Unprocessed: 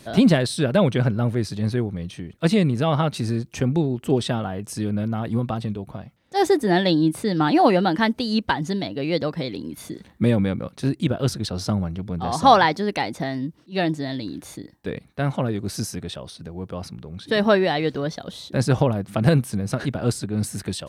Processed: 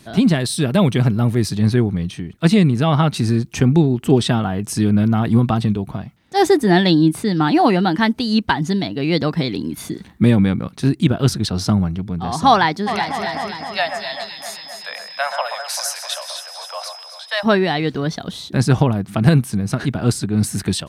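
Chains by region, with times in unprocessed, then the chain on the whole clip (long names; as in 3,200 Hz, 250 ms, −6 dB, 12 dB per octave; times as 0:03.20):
0:00.38–0:01.50: high-shelf EQ 8,900 Hz +10.5 dB + notch filter 1,500 Hz, Q 10
0:12.86–0:17.43: Butterworth high-pass 540 Hz 96 dB per octave + steady tone 5,100 Hz −48 dBFS + delay that swaps between a low-pass and a high-pass 130 ms, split 2,000 Hz, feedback 76%, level −6.5 dB
whole clip: parametric band 180 Hz +2 dB; automatic gain control gain up to 9.5 dB; parametric band 540 Hz −8.5 dB 0.38 octaves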